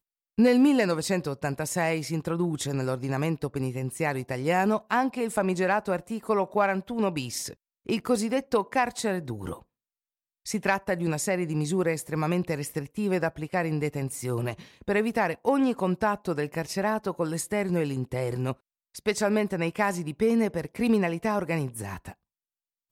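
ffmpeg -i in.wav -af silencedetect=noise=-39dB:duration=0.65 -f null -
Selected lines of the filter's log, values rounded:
silence_start: 9.58
silence_end: 10.46 | silence_duration: 0.88
silence_start: 22.12
silence_end: 22.92 | silence_duration: 0.80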